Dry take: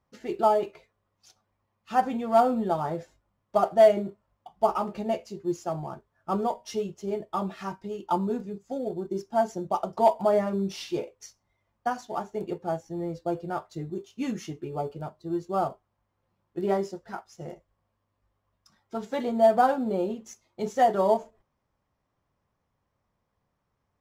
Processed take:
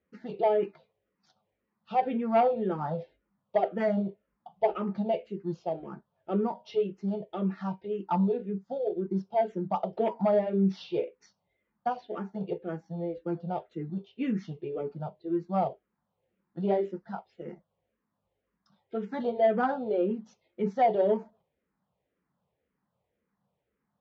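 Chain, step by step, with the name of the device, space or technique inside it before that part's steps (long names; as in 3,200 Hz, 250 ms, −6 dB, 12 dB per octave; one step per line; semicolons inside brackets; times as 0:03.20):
barber-pole phaser into a guitar amplifier (frequency shifter mixed with the dry sound −1.9 Hz; soft clipping −15.5 dBFS, distortion −19 dB; loudspeaker in its box 80–3,800 Hz, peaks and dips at 100 Hz −8 dB, 190 Hz +8 dB, 470 Hz +6 dB, 1,100 Hz −5 dB)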